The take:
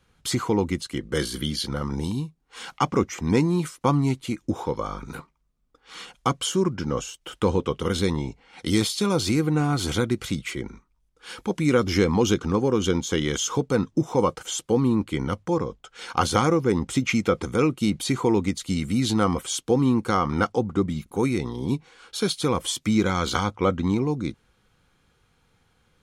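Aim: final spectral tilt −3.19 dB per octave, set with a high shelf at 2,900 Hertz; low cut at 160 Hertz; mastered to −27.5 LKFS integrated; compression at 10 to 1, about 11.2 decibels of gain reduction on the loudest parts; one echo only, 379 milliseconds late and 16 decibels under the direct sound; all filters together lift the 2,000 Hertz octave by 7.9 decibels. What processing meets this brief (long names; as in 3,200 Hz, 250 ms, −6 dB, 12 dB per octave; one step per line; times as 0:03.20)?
high-pass filter 160 Hz
parametric band 2,000 Hz +7 dB
high-shelf EQ 2,900 Hz +7.5 dB
downward compressor 10 to 1, threshold −24 dBFS
single-tap delay 379 ms −16 dB
level +1.5 dB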